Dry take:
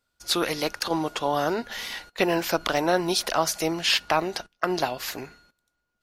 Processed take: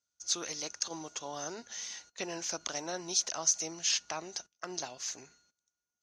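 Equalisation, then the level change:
high-pass filter 68 Hz 12 dB per octave
transistor ladder low-pass 6,500 Hz, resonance 85%
high-shelf EQ 4,200 Hz +6 dB
−4.0 dB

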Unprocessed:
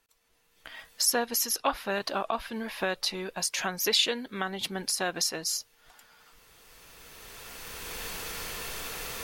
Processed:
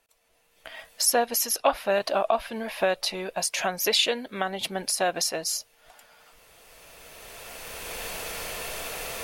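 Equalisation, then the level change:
graphic EQ with 15 bands 630 Hz +11 dB, 2,500 Hz +4 dB, 10,000 Hz +4 dB
0.0 dB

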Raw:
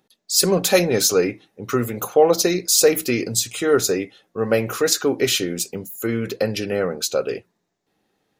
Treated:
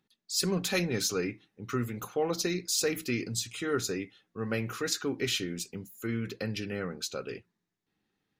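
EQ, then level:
parametric band 600 Hz −12.5 dB 1.4 octaves
high-shelf EQ 6,100 Hz −12 dB
−6.0 dB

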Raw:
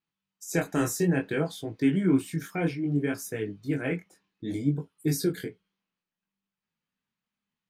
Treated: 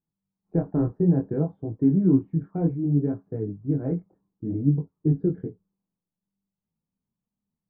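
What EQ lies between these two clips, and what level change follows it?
low-pass filter 1,000 Hz 24 dB per octave
low-shelf EQ 210 Hz +8 dB
low-shelf EQ 460 Hz +6.5 dB
−4.5 dB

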